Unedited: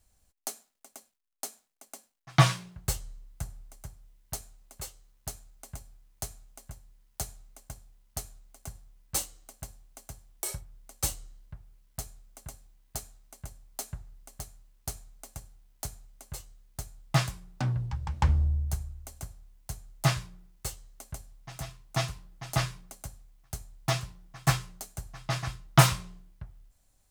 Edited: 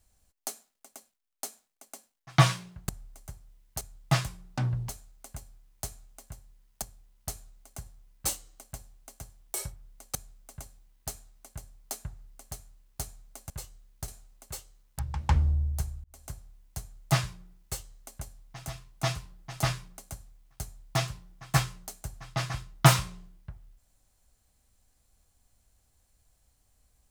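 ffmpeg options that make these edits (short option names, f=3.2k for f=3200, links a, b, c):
-filter_complex "[0:a]asplit=10[a][b][c][d][e][f][g][h][i][j];[a]atrim=end=2.892[k];[b]atrim=start=3.448:end=4.372[l];[c]atrim=start=16.838:end=17.922[m];[d]atrim=start=5.278:end=7.212[n];[e]atrim=start=7.708:end=11.042[o];[f]atrim=start=12.028:end=15.382[p];[g]atrim=start=16.258:end=16.842[q];[h]atrim=start=4.368:end=5.282[r];[i]atrim=start=17.918:end=18.97,asetpts=PTS-STARTPTS,afade=t=out:st=1.048:d=0.004:c=hsin[s];[j]atrim=start=18.97,asetpts=PTS-STARTPTS,afade=t=in:d=0.27[t];[k][l]acrossfade=d=0.004:c1=hsin:c2=hsin[u];[u][m]acrossfade=d=0.004:c1=hsin:c2=hsin[v];[v][n]acrossfade=d=0.004:c1=hsin:c2=hsin[w];[w][o]acrossfade=d=0.004:c1=hsin:c2=hsin[x];[x][p]acrossfade=d=0.004:c1=hsin:c2=hsin[y];[y][q]acrossfade=d=0.004:c1=hsin:c2=hsin[z];[z][r]acrossfade=d=0.004:c1=hsin:c2=hsin[aa];[s][t]concat=n=2:v=0:a=1[ab];[aa][ab]acrossfade=d=0.004:c1=hsin:c2=hsin"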